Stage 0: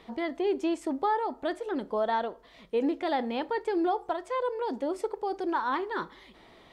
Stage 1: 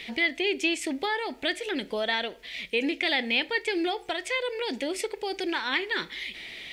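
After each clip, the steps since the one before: resonant high shelf 1.6 kHz +12.5 dB, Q 3; in parallel at +1.5 dB: compression, threshold -33 dBFS, peak gain reduction 13 dB; on the sum: trim -3.5 dB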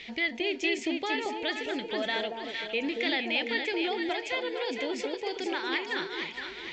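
on a send: echo whose repeats swap between lows and highs 230 ms, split 970 Hz, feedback 65%, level -2 dB; on the sum: resampled via 16 kHz; trim -4 dB

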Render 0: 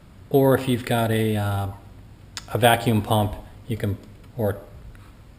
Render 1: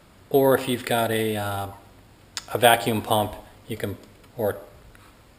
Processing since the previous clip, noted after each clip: tone controls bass -10 dB, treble +2 dB; trim +1 dB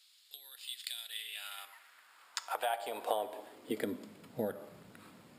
compression 12:1, threshold -27 dBFS, peak gain reduction 17.5 dB; high-pass sweep 3.9 kHz -> 180 Hz, 0.95–4.24 s; trim -6 dB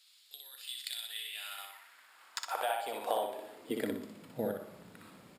overload inside the chain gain 19 dB; feedback delay 61 ms, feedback 33%, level -4 dB

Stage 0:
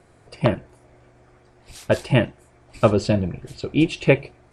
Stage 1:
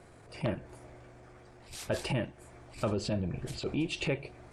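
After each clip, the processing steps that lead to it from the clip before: transient shaper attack -11 dB, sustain +2 dB; compression 12:1, threshold -28 dBFS, peak gain reduction 14 dB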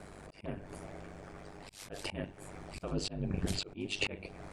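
ring modulator 49 Hz; slow attack 370 ms; trim +8 dB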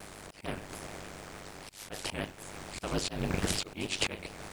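spectral contrast reduction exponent 0.57; vibrato with a chosen wave square 6.8 Hz, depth 100 cents; trim +3 dB

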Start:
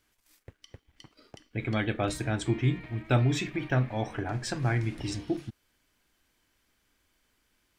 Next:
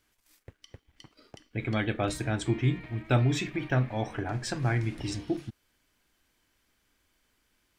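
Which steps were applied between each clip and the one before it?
no audible change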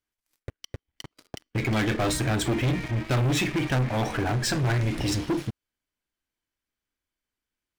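waveshaping leveller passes 5; trim -7 dB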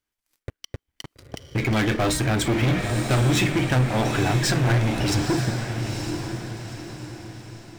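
echo that smears into a reverb 917 ms, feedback 42%, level -6 dB; trim +3 dB

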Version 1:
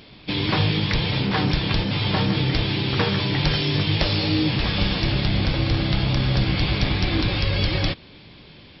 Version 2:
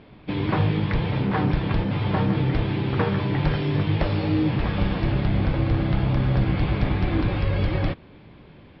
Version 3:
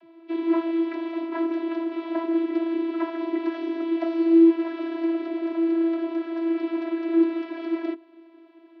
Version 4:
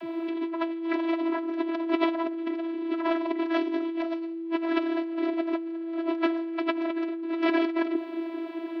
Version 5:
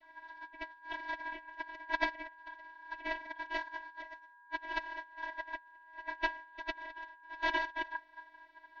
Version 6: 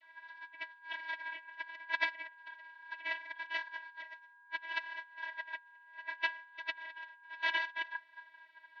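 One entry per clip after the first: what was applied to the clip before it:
low-pass 1.6 kHz 12 dB/octave
vocoder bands 32, saw 331 Hz
peak limiter -19 dBFS, peak gain reduction 10.5 dB; compressor with a negative ratio -37 dBFS, ratio -1; trim +8 dB
ring modulator 1.3 kHz; upward expansion 2.5:1, over -37 dBFS; trim -3 dB
band-pass filter 2.6 kHz, Q 1.2; vibrato 0.67 Hz 8.2 cents; trim +4.5 dB

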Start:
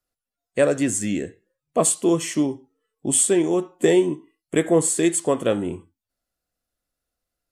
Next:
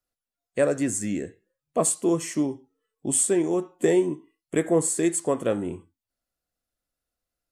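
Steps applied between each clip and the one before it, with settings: dynamic bell 3.2 kHz, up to -7 dB, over -46 dBFS, Q 2.1; trim -3.5 dB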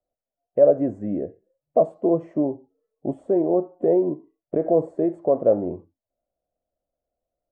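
peak limiter -15.5 dBFS, peak gain reduction 6.5 dB; resonant low-pass 630 Hz, resonance Q 4.9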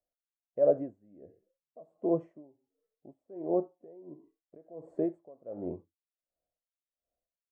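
logarithmic tremolo 1.4 Hz, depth 27 dB; trim -7 dB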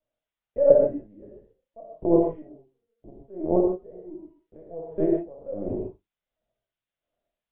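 LPC vocoder at 8 kHz pitch kept; gated-style reverb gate 180 ms flat, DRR -2.5 dB; trim +5 dB

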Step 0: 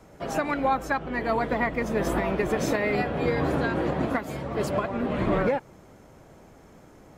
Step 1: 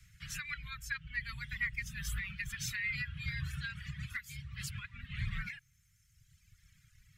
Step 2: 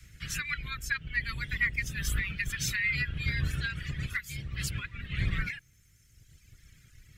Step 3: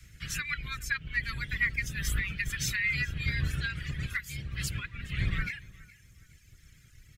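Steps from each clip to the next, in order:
reverb removal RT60 1.8 s; inverse Chebyshev band-stop 300–800 Hz, stop band 60 dB; trim -2 dB
octave divider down 1 oct, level -5 dB; trim +7 dB
feedback delay 417 ms, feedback 34%, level -21 dB

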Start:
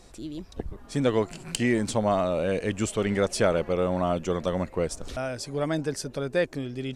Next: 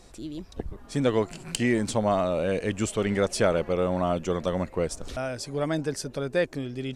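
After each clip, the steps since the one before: no audible change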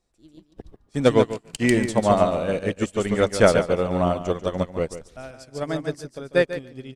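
on a send: feedback delay 144 ms, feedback 31%, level -5 dB; on the sum: upward expansion 2.5:1, over -40 dBFS; trim +8.5 dB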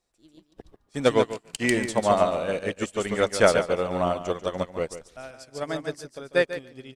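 bass shelf 340 Hz -9 dB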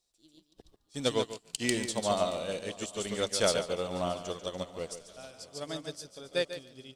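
harmonic-percussive split percussive -4 dB; resonant high shelf 2.7 kHz +9 dB, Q 1.5; shuffle delay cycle 832 ms, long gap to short 3:1, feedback 45%, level -22.5 dB; trim -6.5 dB

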